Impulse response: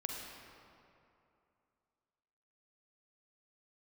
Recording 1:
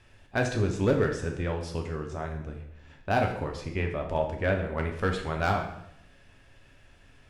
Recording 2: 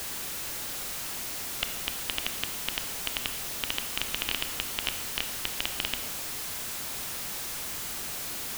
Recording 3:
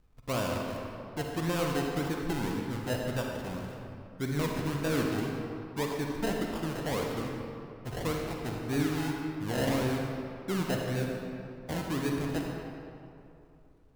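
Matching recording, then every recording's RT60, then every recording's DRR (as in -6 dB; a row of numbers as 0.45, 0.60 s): 3; 0.75, 1.2, 2.7 s; 2.0, 8.0, 0.0 dB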